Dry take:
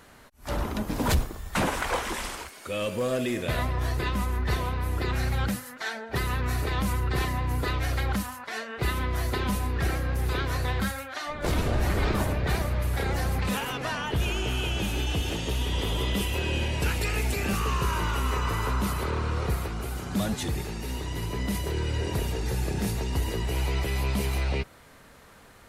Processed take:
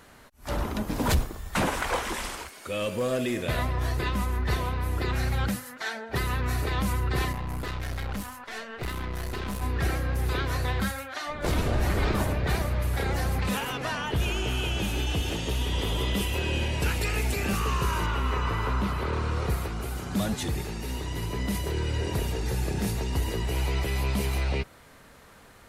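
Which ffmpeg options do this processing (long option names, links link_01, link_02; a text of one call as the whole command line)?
ffmpeg -i in.wav -filter_complex "[0:a]asettb=1/sr,asplit=3[link_01][link_02][link_03];[link_01]atrim=end=7.324[link_04];[link_02]atrim=start=7.32:end=9.62,asetpts=PTS-STARTPTS,afade=type=in:duration=0.004:curve=qsin,afade=type=out:start_time=2.296:duration=0.004:curve=qsin,aeval=exprs='(tanh(28.2*val(0)+0.55)-tanh(0.55))/28.2':channel_layout=same[link_05];[link_03]atrim=start=9.616[link_06];[link_04][link_05]acrossfade=duration=0.004:curve1=hsin:curve2=qsin[link_07];[link_07][link_06]acrossfade=duration=0.004:curve1=qsin:curve2=hsin,asettb=1/sr,asplit=3[link_08][link_09][link_10];[link_08]atrim=end=18.064[link_11];[link_09]atrim=start=18.06:end=19.13,asetpts=PTS-STARTPTS,afade=type=in:duration=0.004:curve=qsin,afade=type=out:start_time=1.066:duration=0.004:curve=qsin,acrossover=split=4400[link_12][link_13];[link_13]acompressor=threshold=-55dB:ratio=4:attack=1:release=60[link_14];[link_12][link_14]amix=inputs=2:normalize=0[link_15];[link_10]atrim=start=19.126[link_16];[link_11][link_15]acrossfade=duration=0.004:curve1=hsin:curve2=qsin[link_17];[link_17][link_16]acrossfade=duration=0.004:curve1=qsin:curve2=hsin" out.wav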